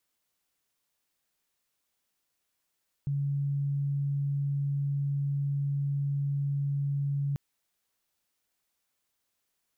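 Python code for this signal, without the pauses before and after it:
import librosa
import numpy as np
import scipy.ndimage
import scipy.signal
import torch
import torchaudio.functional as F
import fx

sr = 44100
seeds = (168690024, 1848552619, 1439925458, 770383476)

y = 10.0 ** (-26.5 / 20.0) * np.sin(2.0 * np.pi * (141.0 * (np.arange(round(4.29 * sr)) / sr)))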